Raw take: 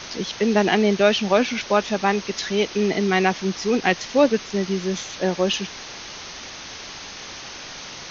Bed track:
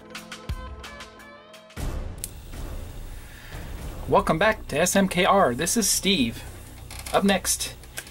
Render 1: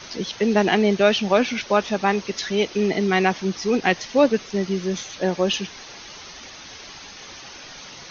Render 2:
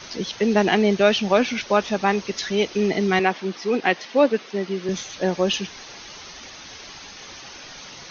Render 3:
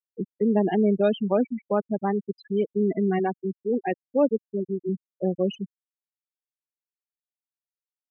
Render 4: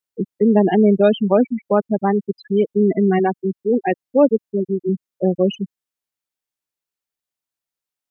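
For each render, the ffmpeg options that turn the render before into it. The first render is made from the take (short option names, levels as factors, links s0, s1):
-af "afftdn=nr=7:nf=-37"
-filter_complex "[0:a]asettb=1/sr,asplit=3[s0][s1][s2];[s0]atrim=end=3.194[s3];[s1]atrim=start=3.19:end=4.89,asetpts=PTS-STARTPTS,afade=t=in:d=0.004:c=qsin,afade=t=out:st=1.696:d=0.004:c=qsin,highpass=240,lowpass=4200[s4];[s2]atrim=start=4.886[s5];[s3][s4]acrossfade=d=0.004:c1=hsin:c2=qsin[s6];[s6][s5]acrossfade=d=0.004:c1=qsin:c2=hsin"
-af "afftfilt=real='re*gte(hypot(re,im),0.251)':imag='im*gte(hypot(re,im),0.251)':win_size=1024:overlap=0.75,equalizer=f=2400:w=0.38:g=-13.5"
-af "volume=2.37"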